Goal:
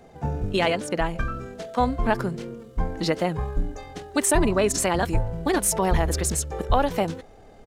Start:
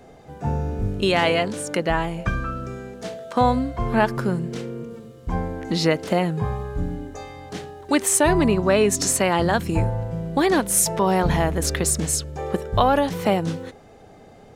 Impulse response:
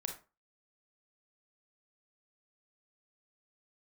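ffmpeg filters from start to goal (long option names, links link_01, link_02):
-af "atempo=1.9,asubboost=boost=5:cutoff=53,volume=-2dB"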